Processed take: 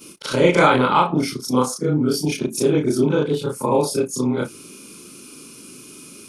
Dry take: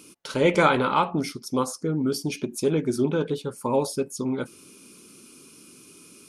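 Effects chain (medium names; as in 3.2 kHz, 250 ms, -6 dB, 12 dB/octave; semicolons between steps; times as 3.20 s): short-time spectra conjugated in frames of 79 ms; in parallel at -2 dB: compression, threshold -32 dBFS, peak gain reduction 14 dB; on the sum: trim +6.5 dB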